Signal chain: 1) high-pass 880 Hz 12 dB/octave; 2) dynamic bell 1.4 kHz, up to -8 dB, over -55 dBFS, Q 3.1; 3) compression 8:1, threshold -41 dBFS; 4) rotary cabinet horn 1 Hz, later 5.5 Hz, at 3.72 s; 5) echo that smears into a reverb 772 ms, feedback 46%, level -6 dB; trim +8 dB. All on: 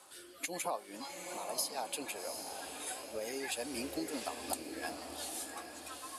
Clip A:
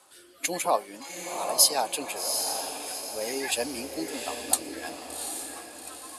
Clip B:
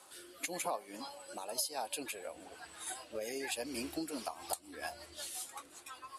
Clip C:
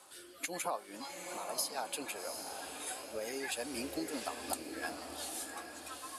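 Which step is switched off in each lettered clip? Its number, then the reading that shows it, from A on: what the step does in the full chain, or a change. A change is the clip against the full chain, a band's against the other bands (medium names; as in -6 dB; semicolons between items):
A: 3, mean gain reduction 4.5 dB; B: 5, echo-to-direct -5.0 dB to none; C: 2, 2 kHz band +1.5 dB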